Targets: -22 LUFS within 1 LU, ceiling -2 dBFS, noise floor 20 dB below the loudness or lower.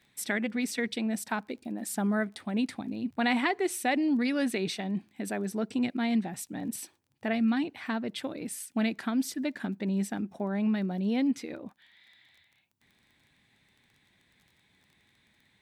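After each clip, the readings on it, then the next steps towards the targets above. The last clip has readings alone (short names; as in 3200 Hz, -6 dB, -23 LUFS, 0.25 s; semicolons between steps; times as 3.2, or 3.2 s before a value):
ticks 22/s; loudness -31.0 LUFS; peak -15.5 dBFS; loudness target -22.0 LUFS
-> de-click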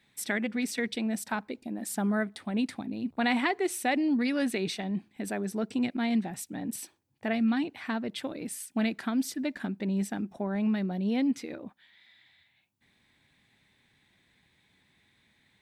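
ticks 0/s; loudness -31.0 LUFS; peak -15.5 dBFS; loudness target -22.0 LUFS
-> gain +9 dB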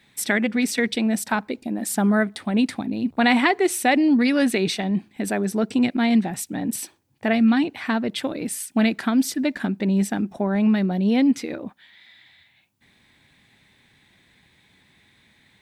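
loudness -22.0 LUFS; peak -6.5 dBFS; noise floor -60 dBFS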